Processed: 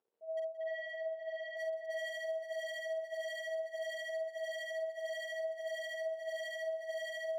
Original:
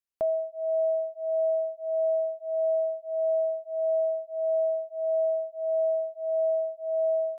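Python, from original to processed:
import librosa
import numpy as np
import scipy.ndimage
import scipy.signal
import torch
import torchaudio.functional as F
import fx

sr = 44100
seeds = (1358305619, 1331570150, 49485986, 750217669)

y = fx.auto_swell(x, sr, attack_ms=262.0)
y = fx.dmg_crackle(y, sr, seeds[0], per_s=350.0, level_db=-56.0)
y = fx.bandpass_q(y, sr, hz=460.0, q=3.9)
y = y * (1.0 - 0.56 / 2.0 + 0.56 / 2.0 * np.cos(2.0 * np.pi * 13.0 * (np.arange(len(y)) / sr)))
y = 10.0 ** (-39.5 / 20.0) * (np.abs((y / 10.0 ** (-39.5 / 20.0) + 3.0) % 4.0 - 2.0) - 1.0)
y = fx.air_absorb(y, sr, metres=300.0, at=(0.58, 1.57))
y = fx.doubler(y, sr, ms=48.0, db=-6.0)
y = fx.echo_multitap(y, sr, ms=(175, 518), db=(-18.0, -7.5))
y = y * 10.0 ** (4.0 / 20.0)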